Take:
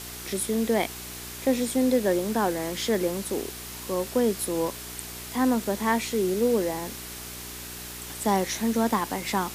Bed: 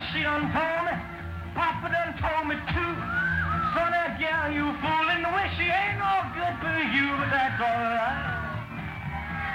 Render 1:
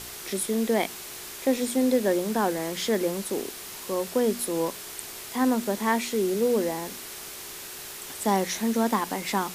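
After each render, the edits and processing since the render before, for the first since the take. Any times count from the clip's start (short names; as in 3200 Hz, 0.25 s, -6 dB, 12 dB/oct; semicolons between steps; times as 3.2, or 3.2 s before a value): de-hum 60 Hz, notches 5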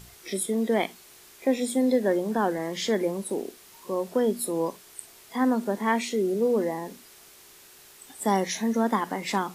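noise print and reduce 12 dB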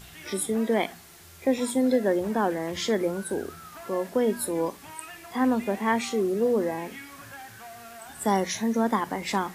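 add bed -19 dB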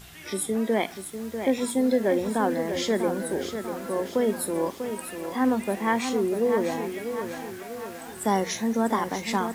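lo-fi delay 0.644 s, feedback 55%, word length 8-bit, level -8 dB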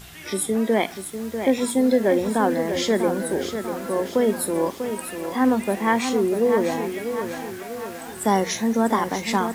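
gain +4 dB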